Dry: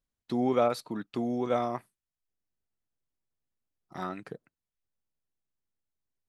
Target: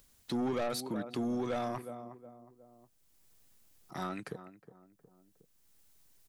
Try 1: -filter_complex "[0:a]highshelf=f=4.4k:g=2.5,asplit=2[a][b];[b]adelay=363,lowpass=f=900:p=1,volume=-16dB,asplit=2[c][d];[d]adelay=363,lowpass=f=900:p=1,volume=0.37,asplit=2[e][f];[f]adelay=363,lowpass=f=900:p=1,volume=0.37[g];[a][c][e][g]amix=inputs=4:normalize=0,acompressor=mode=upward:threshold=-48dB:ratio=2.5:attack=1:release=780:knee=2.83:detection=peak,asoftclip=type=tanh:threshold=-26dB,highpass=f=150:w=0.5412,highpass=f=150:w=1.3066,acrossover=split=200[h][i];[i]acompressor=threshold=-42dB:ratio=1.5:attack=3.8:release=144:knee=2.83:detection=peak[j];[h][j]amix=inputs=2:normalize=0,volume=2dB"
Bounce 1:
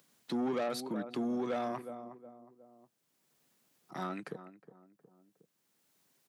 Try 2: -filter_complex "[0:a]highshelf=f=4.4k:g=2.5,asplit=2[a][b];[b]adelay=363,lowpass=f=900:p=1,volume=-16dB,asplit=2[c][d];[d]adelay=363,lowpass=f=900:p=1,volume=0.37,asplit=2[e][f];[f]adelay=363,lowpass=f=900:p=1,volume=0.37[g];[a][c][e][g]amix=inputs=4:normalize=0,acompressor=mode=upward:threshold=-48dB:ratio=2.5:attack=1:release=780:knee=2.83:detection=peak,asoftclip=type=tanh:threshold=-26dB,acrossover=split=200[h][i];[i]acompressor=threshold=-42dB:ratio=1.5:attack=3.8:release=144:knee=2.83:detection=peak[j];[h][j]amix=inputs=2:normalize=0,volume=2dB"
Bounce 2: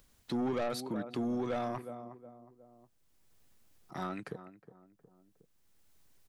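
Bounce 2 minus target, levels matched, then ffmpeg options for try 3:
8000 Hz band -4.5 dB
-filter_complex "[0:a]highshelf=f=4.4k:g=10,asplit=2[a][b];[b]adelay=363,lowpass=f=900:p=1,volume=-16dB,asplit=2[c][d];[d]adelay=363,lowpass=f=900:p=1,volume=0.37,asplit=2[e][f];[f]adelay=363,lowpass=f=900:p=1,volume=0.37[g];[a][c][e][g]amix=inputs=4:normalize=0,acompressor=mode=upward:threshold=-48dB:ratio=2.5:attack=1:release=780:knee=2.83:detection=peak,asoftclip=type=tanh:threshold=-26dB,acrossover=split=200[h][i];[i]acompressor=threshold=-42dB:ratio=1.5:attack=3.8:release=144:knee=2.83:detection=peak[j];[h][j]amix=inputs=2:normalize=0,volume=2dB"

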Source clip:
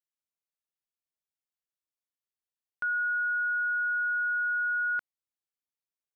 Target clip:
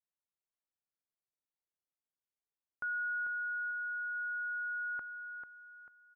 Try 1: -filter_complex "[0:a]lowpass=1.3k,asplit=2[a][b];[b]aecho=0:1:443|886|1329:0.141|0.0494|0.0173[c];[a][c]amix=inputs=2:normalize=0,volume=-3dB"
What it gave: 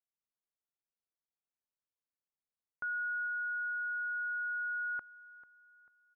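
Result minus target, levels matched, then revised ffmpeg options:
echo-to-direct -9.5 dB
-filter_complex "[0:a]lowpass=1.3k,asplit=2[a][b];[b]aecho=0:1:443|886|1329|1772:0.422|0.148|0.0517|0.0181[c];[a][c]amix=inputs=2:normalize=0,volume=-3dB"

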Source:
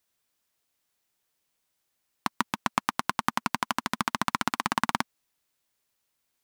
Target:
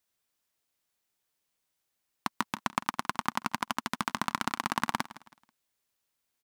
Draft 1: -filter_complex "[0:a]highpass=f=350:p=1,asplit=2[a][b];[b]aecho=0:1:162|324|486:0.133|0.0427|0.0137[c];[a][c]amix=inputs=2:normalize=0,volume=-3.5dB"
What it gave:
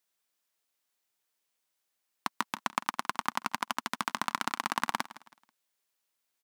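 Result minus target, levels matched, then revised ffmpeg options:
250 Hz band -4.5 dB
-filter_complex "[0:a]asplit=2[a][b];[b]aecho=0:1:162|324|486:0.133|0.0427|0.0137[c];[a][c]amix=inputs=2:normalize=0,volume=-3.5dB"

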